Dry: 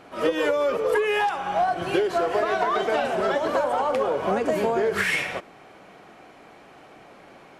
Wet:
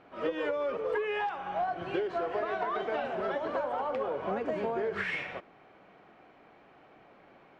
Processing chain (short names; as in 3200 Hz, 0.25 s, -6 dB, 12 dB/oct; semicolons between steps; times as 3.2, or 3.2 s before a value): LPF 3100 Hz 12 dB/oct; gain -9 dB